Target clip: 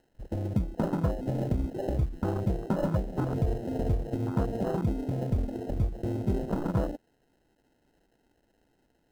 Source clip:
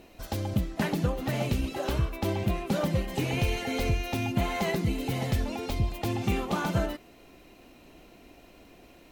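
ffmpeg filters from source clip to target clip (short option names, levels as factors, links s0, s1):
-af "acrusher=samples=38:mix=1:aa=0.000001,afwtdn=0.0316"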